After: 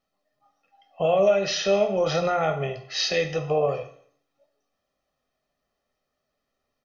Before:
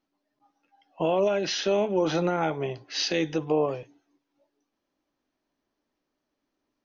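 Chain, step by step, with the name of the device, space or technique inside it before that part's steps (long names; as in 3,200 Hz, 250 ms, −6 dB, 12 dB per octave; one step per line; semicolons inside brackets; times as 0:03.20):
microphone above a desk (comb filter 1.6 ms, depth 77%; convolution reverb RT60 0.55 s, pre-delay 8 ms, DRR 5 dB)
0:01.75–0:02.35: parametric band 4,900 Hz +7 dB 0.23 octaves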